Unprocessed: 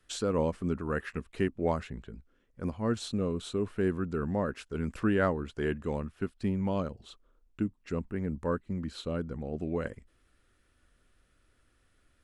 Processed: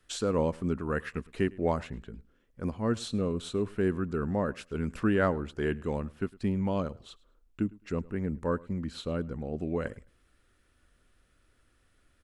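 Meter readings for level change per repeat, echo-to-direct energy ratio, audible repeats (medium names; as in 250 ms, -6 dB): no regular repeats, -23.0 dB, 1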